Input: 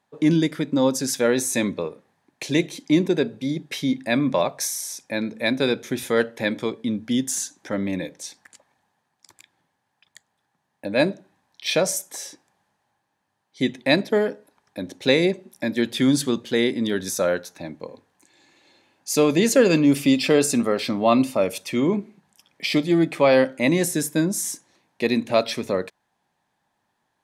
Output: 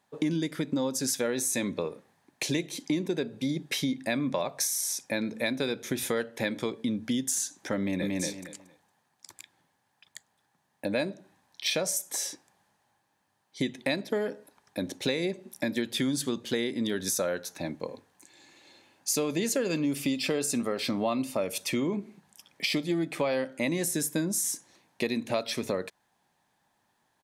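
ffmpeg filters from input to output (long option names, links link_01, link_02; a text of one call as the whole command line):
ffmpeg -i in.wav -filter_complex "[0:a]asplit=2[link_01][link_02];[link_02]afade=type=in:start_time=7.78:duration=0.01,afade=type=out:start_time=8.2:duration=0.01,aecho=0:1:230|460|690:0.749894|0.149979|0.0299958[link_03];[link_01][link_03]amix=inputs=2:normalize=0,highshelf=frequency=5300:gain=5.5,acompressor=threshold=-26dB:ratio=6" out.wav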